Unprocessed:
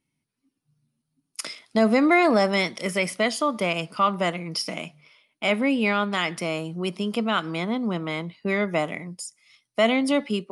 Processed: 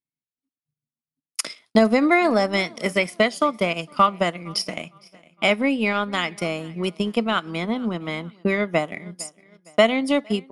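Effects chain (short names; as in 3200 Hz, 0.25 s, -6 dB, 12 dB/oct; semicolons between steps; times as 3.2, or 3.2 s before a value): gate -52 dBFS, range -21 dB; feedback echo 0.459 s, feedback 40%, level -21 dB; transient shaper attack +7 dB, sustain -6 dB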